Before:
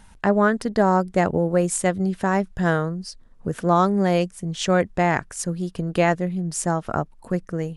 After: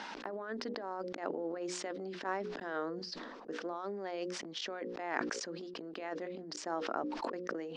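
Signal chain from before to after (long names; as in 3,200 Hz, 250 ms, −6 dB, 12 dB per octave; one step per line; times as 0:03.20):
gate with flip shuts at −20 dBFS, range −24 dB
compressor whose output falls as the input rises −45 dBFS, ratio −0.5
elliptic band-pass filter 280–5,100 Hz, stop band 40 dB
mains-hum notches 60/120/180/240/300/360/420/480/540 Hz
level that may fall only so fast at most 34 dB per second
level +9 dB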